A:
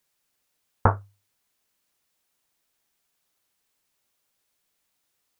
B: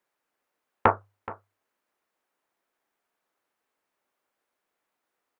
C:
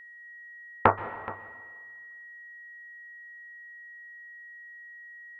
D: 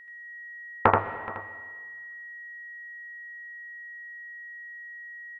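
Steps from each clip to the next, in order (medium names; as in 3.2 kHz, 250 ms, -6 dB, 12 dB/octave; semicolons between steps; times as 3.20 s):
self-modulated delay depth 0.18 ms; three-band isolator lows -16 dB, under 240 Hz, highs -16 dB, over 2 kHz; delay 424 ms -17.5 dB; trim +3.5 dB
whistle 1.9 kHz -46 dBFS; plate-style reverb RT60 1.5 s, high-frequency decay 0.9×, pre-delay 115 ms, DRR 13.5 dB
delay 80 ms -3 dB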